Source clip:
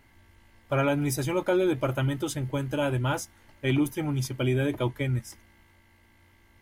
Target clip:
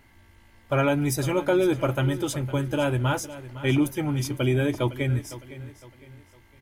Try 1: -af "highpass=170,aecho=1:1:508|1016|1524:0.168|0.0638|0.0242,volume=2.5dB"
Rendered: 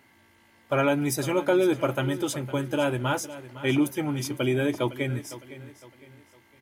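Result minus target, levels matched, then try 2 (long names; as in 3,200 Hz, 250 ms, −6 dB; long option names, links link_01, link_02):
125 Hz band −4.5 dB
-af "aecho=1:1:508|1016|1524:0.168|0.0638|0.0242,volume=2.5dB"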